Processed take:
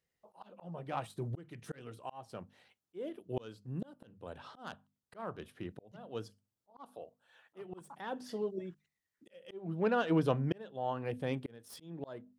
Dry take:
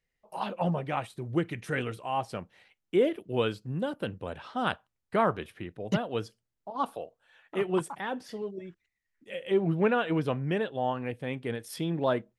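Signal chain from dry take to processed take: tracing distortion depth 0.039 ms; HPF 69 Hz; bell 2200 Hz -6.5 dB 0.8 oct; notches 50/100/150/200/250 Hz; auto swell 0.665 s

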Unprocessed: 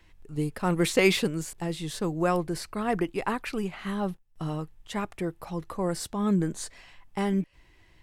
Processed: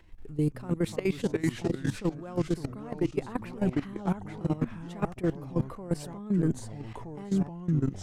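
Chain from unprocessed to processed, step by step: echoes that change speed 0.176 s, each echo -3 st, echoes 3, each echo -6 dB; reverse; compressor 8:1, threshold -33 dBFS, peak gain reduction 17 dB; reverse; tilt shelf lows +4.5 dB, about 840 Hz; level quantiser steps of 16 dB; gain +8 dB

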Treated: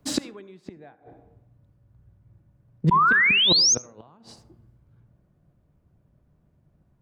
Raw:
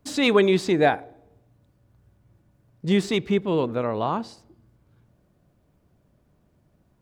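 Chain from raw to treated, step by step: bell 150 Hz +4.5 dB 0.67 oct; in parallel at -2 dB: compressor 10:1, threshold -29 dBFS, peak gain reduction 16 dB; on the sum: flipped gate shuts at -13 dBFS, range -28 dB; painted sound rise, 2.91–3.75, 950–6700 Hz -21 dBFS; on a send at -17 dB: reverb RT60 0.70 s, pre-delay 62 ms; on the sum: three-band expander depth 40%

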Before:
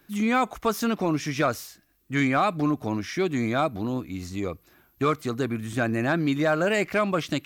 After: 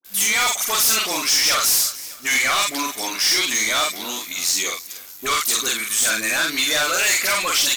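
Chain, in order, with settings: HPF 220 Hz 12 dB/oct; differentiator; hard clip -38.5 dBFS, distortion -8 dB; bell 6700 Hz +10 dB 2.9 oct; dispersion highs, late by 45 ms, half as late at 980 Hz; speed mistake 25 fps video run at 24 fps; doubler 46 ms -4 dB; feedback echo 0.302 s, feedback 56%, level -21 dB; sample leveller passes 3; gain +8.5 dB

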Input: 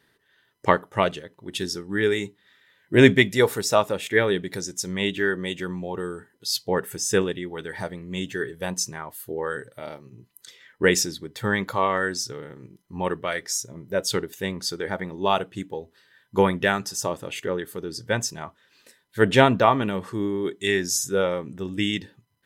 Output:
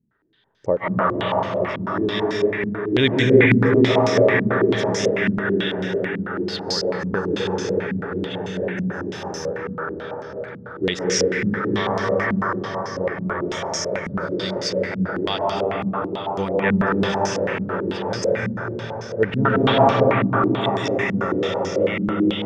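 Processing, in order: low shelf 150 Hz +6 dB; reverb RT60 5.7 s, pre-delay 0.107 s, DRR -6.5 dB; stepped low-pass 9.1 Hz 210–5600 Hz; gain -7.5 dB

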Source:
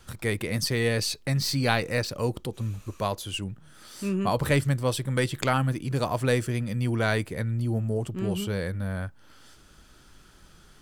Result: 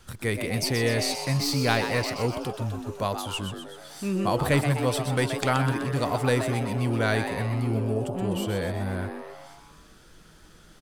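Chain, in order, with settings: frequency-shifting echo 0.126 s, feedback 59%, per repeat +150 Hz, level -8 dB

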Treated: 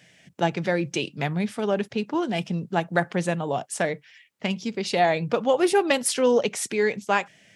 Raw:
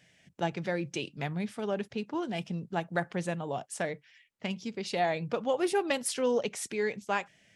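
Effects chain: HPF 100 Hz; gain +8 dB

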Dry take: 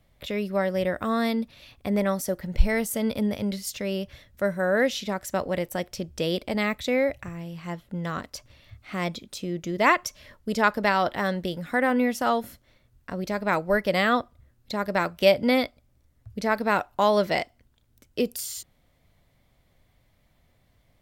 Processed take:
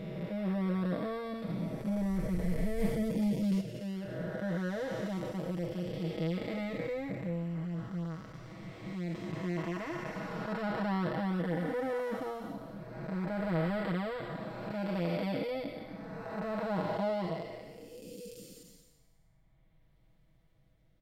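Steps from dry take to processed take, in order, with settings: time blur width 0.778 s; 2.78–3.61 sample leveller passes 1; low shelf 360 Hz +8 dB; comb 6.2 ms, depth 75%; reverb removal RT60 1.3 s; high shelf 5300 Hz -5.5 dB; gain -5 dB

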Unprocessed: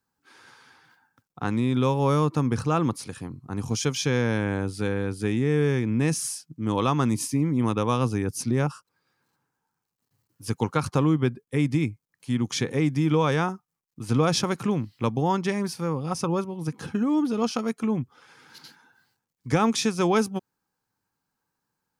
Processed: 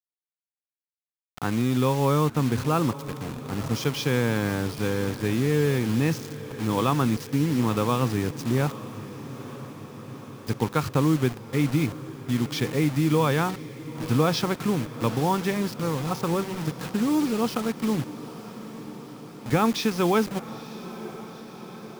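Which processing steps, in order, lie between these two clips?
LPF 5000 Hz 24 dB/oct; bit-crush 6-bit; diffused feedback echo 0.918 s, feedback 69%, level -15 dB

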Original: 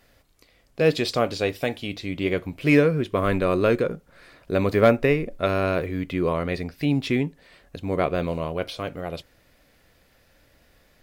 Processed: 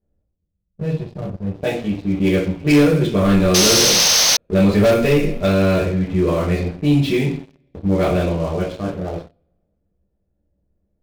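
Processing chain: spectral gain 0.34–1.52, 210–10000 Hz -15 dB; low-pass opened by the level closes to 470 Hz, open at -15 dBFS; two-slope reverb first 0.46 s, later 1.9 s, from -25 dB, DRR -7.5 dB; painted sound noise, 3.54–4.37, 450–6500 Hz -14 dBFS; high shelf 3500 Hz +7 dB; sample leveller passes 3; bell 1500 Hz -9.5 dB 2.7 oct; gain -8 dB

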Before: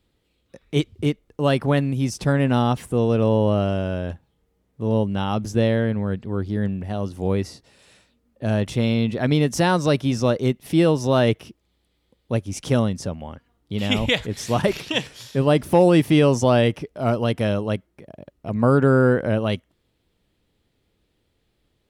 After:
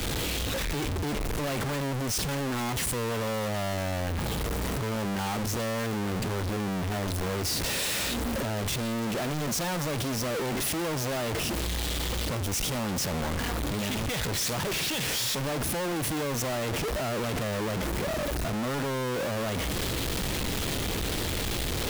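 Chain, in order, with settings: infinite clipping; three-band expander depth 40%; gain -7.5 dB

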